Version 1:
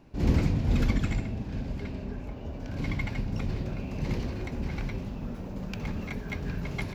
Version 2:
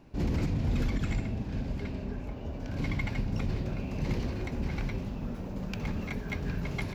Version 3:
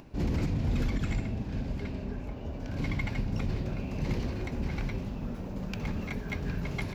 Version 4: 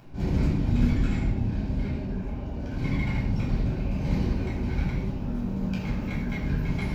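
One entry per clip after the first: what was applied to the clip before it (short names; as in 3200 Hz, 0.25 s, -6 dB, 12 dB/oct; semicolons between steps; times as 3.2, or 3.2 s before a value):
limiter -21 dBFS, peak gain reduction 9.5 dB
upward compressor, threshold -46 dBFS
reverb RT60 0.70 s, pre-delay 10 ms, DRR -5.5 dB; gain -6.5 dB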